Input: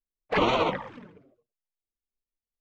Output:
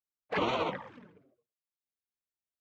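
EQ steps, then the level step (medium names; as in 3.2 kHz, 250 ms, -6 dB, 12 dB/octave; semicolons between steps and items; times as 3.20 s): high-pass 69 Hz 12 dB/octave; peaking EQ 1.6 kHz +2.5 dB 0.23 oct; -7.0 dB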